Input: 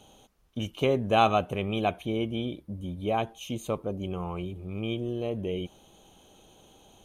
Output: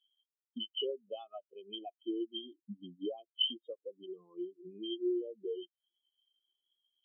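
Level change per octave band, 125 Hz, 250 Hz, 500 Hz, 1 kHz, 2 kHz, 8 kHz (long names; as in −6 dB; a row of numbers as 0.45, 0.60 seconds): −29.0 dB, −9.5 dB, −10.5 dB, −25.0 dB, below −35 dB, below −30 dB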